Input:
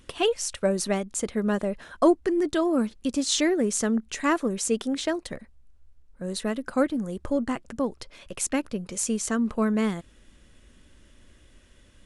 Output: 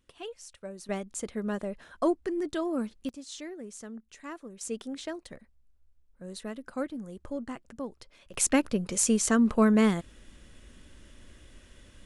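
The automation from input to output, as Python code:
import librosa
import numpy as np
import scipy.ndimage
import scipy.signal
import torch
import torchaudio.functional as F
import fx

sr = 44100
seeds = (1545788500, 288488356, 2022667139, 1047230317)

y = fx.gain(x, sr, db=fx.steps((0.0, -17.5), (0.89, -7.0), (3.09, -18.0), (4.61, -10.0), (8.34, 2.5)))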